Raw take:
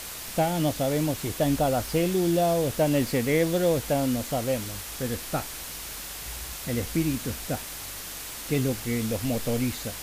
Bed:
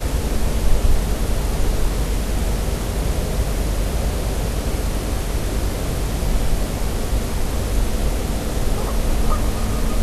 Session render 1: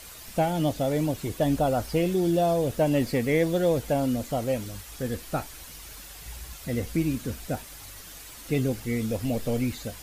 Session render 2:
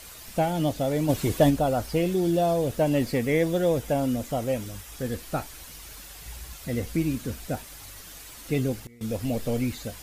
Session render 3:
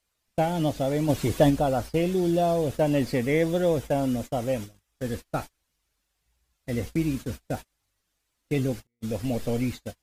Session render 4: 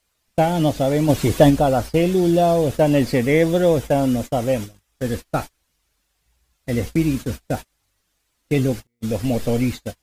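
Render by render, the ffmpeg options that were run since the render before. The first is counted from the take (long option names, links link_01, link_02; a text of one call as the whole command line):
ffmpeg -i in.wav -af "afftdn=noise_reduction=9:noise_floor=-38" out.wav
ffmpeg -i in.wav -filter_complex "[0:a]asplit=3[link_01][link_02][link_03];[link_01]afade=type=out:start_time=1.08:duration=0.02[link_04];[link_02]acontrast=51,afade=type=in:start_time=1.08:duration=0.02,afade=type=out:start_time=1.49:duration=0.02[link_05];[link_03]afade=type=in:start_time=1.49:duration=0.02[link_06];[link_04][link_05][link_06]amix=inputs=3:normalize=0,asettb=1/sr,asplit=3[link_07][link_08][link_09];[link_07]atrim=end=3.194[link_10];[link_08]atrim=start=3.19:end=4.97,asetpts=PTS-STARTPTS,afade=type=in:duration=0.004:curve=qsin,afade=type=out:start_time=1.776:duration=0.004:curve=qsin,bandreject=frequency=4300:width=12[link_11];[link_09]atrim=start=4.966[link_12];[link_10][link_11]acrossfade=duration=0.004:curve1=hsin:curve2=qsin[link_13];[link_13][link_12]acrossfade=duration=0.004:curve1=qsin:curve2=hsin,asplit=3[link_14][link_15][link_16];[link_14]atrim=end=8.87,asetpts=PTS-STARTPTS,afade=type=out:start_time=8.49:duration=0.38:curve=log:silence=0.0630957[link_17];[link_15]atrim=start=8.87:end=9.01,asetpts=PTS-STARTPTS,volume=-24dB[link_18];[link_16]atrim=start=9.01,asetpts=PTS-STARTPTS,afade=type=in:duration=0.38:curve=log:silence=0.0630957[link_19];[link_17][link_18][link_19]concat=n=3:v=0:a=1" out.wav
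ffmpeg -i in.wav -af "agate=range=-32dB:threshold=-33dB:ratio=16:detection=peak,highshelf=frequency=12000:gain=-9" out.wav
ffmpeg -i in.wav -af "volume=7dB" out.wav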